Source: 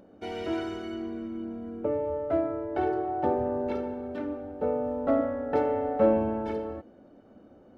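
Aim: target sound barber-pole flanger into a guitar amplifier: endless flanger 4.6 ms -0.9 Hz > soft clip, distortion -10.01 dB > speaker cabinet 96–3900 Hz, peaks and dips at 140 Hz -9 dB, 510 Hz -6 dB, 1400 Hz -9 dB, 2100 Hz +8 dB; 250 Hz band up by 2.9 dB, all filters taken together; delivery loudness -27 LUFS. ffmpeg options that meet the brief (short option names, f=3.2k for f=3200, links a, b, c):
-filter_complex "[0:a]equalizer=f=250:t=o:g=4.5,asplit=2[a][b];[b]adelay=4.6,afreqshift=-0.9[c];[a][c]amix=inputs=2:normalize=1,asoftclip=threshold=-25dB,highpass=96,equalizer=f=140:t=q:w=4:g=-9,equalizer=f=510:t=q:w=4:g=-6,equalizer=f=1.4k:t=q:w=4:g=-9,equalizer=f=2.1k:t=q:w=4:g=8,lowpass=f=3.9k:w=0.5412,lowpass=f=3.9k:w=1.3066,volume=8dB"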